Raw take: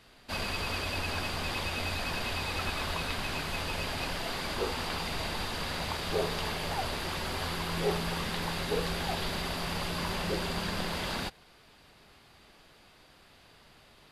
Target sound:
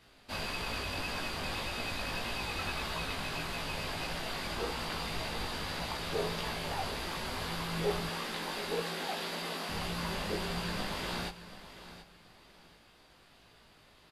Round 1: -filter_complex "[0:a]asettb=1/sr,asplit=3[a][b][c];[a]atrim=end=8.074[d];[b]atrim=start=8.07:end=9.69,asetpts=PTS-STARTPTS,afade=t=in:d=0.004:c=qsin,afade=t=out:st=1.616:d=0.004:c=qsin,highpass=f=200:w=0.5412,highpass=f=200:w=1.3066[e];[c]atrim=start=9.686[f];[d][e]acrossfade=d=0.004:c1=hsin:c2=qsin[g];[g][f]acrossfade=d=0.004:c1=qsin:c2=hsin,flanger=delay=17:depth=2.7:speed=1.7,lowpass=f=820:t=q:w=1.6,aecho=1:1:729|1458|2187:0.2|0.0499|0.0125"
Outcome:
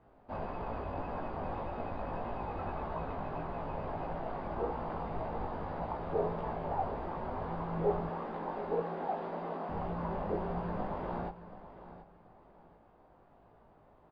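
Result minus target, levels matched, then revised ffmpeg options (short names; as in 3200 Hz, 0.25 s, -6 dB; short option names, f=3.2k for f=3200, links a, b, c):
1000 Hz band +4.0 dB
-filter_complex "[0:a]asettb=1/sr,asplit=3[a][b][c];[a]atrim=end=8.074[d];[b]atrim=start=8.07:end=9.69,asetpts=PTS-STARTPTS,afade=t=in:d=0.004:c=qsin,afade=t=out:st=1.616:d=0.004:c=qsin,highpass=f=200:w=0.5412,highpass=f=200:w=1.3066[e];[c]atrim=start=9.686[f];[d][e]acrossfade=d=0.004:c1=hsin:c2=qsin[g];[g][f]acrossfade=d=0.004:c1=qsin:c2=hsin,flanger=delay=17:depth=2.7:speed=1.7,aecho=1:1:729|1458|2187:0.2|0.0499|0.0125"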